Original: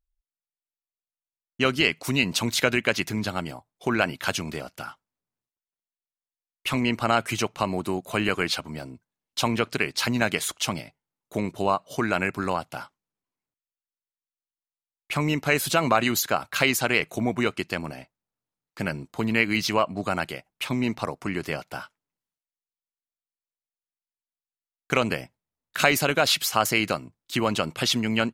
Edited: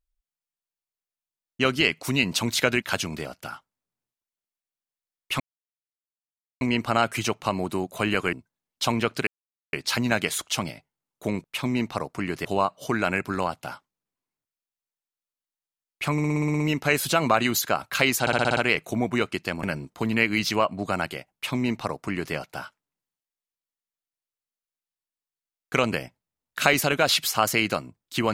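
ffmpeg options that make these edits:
-filter_complex "[0:a]asplit=22[a][b][c][d][e][f][g][h][i][j][k][l][m][n][o][p][q][r][s][t][u][v];[a]atrim=end=2.822[w];[b]atrim=start=4.168:end=6.75,asetpts=PTS-STARTPTS,afade=t=out:st=2.578:d=0.004:c=hsin,apad=pad_dur=1.21[x];[c]atrim=start=6.75:end=8.472,asetpts=PTS-STARTPTS,afade=t=in:d=0.004:c=hsin[y];[d]atrim=start=8.888:end=9.83,asetpts=PTS-STARTPTS,afade=t=out:st=0.938:d=0.004:c=hsin,apad=pad_dur=0.46[z];[e]atrim=start=9.83:end=11.542,asetpts=PTS-STARTPTS,afade=t=in:d=0.004:c=hsin[aa];[f]atrim=start=20.508:end=21.522[ab];[g]atrim=start=11.538:end=15.272[ac];[h]atrim=start=15.208:end=15.272[ad];[i]atrim=start=15.208:end=15.272[ae];[j]atrim=start=15.208:end=15.272[af];[k]atrim=start=15.208:end=15.272[ag];[l]atrim=start=15.208:end=15.272[ah];[m]atrim=start=15.208:end=15.272[ai];[n]atrim=start=15.208:end=15.272[aj];[o]atrim=start=15.208:end=16.882[ak];[p]atrim=start=16.818:end=16.882[al];[q]atrim=start=16.818:end=16.882[am];[r]atrim=start=16.818:end=16.882[an];[s]atrim=start=16.818:end=16.882[ao];[t]atrim=start=16.818:end=16.882[ap];[u]atrim=start=16.818:end=17.882[aq];[v]atrim=start=18.808[ar];[x][y]concat=n=2:v=0:a=1[as];[w][as]acrossfade=d=0.004:c1=hsin:c2=hsin[at];[z][aa]concat=n=2:v=0:a=1[au];[at][au]acrossfade=d=0.004:c1=hsin:c2=hsin[av];[av][ab]acrossfade=d=0.004:c1=hsin:c2=hsin[aw];[aw][ac]acrossfade=d=0.004:c1=hsin:c2=hsin[ax];[ax][ad]acrossfade=d=0.004:c1=hsin:c2=hsin[ay];[ay][ae]acrossfade=d=0.004:c1=hsin:c2=hsin[az];[az][af]acrossfade=d=0.004:c1=hsin:c2=hsin[ba];[ba][ag]acrossfade=d=0.004:c1=hsin:c2=hsin[bb];[bb][ah]acrossfade=d=0.004:c1=hsin:c2=hsin[bc];[bc][ai]acrossfade=d=0.004:c1=hsin:c2=hsin[bd];[bd][aj]acrossfade=d=0.004:c1=hsin:c2=hsin[be];[be][ak]acrossfade=d=0.004:c1=hsin:c2=hsin[bf];[bf][al]acrossfade=d=0.004:c1=hsin:c2=hsin[bg];[bg][am]acrossfade=d=0.004:c1=hsin:c2=hsin[bh];[bh][an]acrossfade=d=0.004:c1=hsin:c2=hsin[bi];[bi][ao]acrossfade=d=0.004:c1=hsin:c2=hsin[bj];[bj][ap]acrossfade=d=0.004:c1=hsin:c2=hsin[bk];[bk][aq]acrossfade=d=0.004:c1=hsin:c2=hsin[bl];[bl][ar]acrossfade=d=0.004:c1=hsin:c2=hsin"

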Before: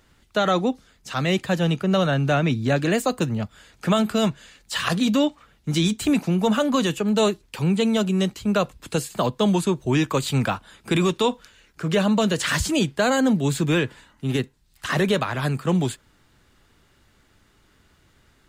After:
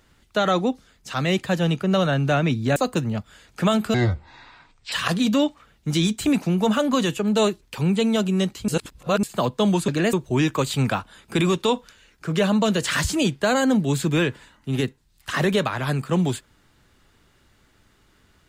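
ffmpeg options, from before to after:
-filter_complex "[0:a]asplit=8[a][b][c][d][e][f][g][h];[a]atrim=end=2.762[i];[b]atrim=start=3.008:end=4.194[j];[c]atrim=start=4.19:end=4.73,asetpts=PTS-STARTPTS,asetrate=24255,aresample=44100,atrim=end_sample=43298,asetpts=PTS-STARTPTS[k];[d]atrim=start=4.726:end=8.492[l];[e]atrim=start=8.488:end=9.042,asetpts=PTS-STARTPTS,areverse[m];[f]atrim=start=9.038:end=9.692[n];[g]atrim=start=2.758:end=3.012[o];[h]atrim=start=9.688[p];[i][j]acrossfade=d=0.004:c1=hsin:c2=hsin[q];[q][k]acrossfade=d=0.004:c1=hsin:c2=hsin[r];[r][l]acrossfade=d=0.004:c1=hsin:c2=hsin[s];[s][m]acrossfade=d=0.004:c1=hsin:c2=hsin[t];[t][n]acrossfade=d=0.004:c1=hsin:c2=hsin[u];[u][o]acrossfade=d=0.004:c1=hsin:c2=hsin[v];[v][p]acrossfade=d=0.004:c1=hsin:c2=hsin"

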